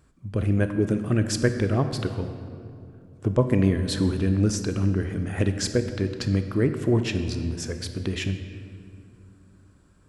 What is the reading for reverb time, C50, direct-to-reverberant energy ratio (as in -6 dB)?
2.5 s, 8.5 dB, 7.5 dB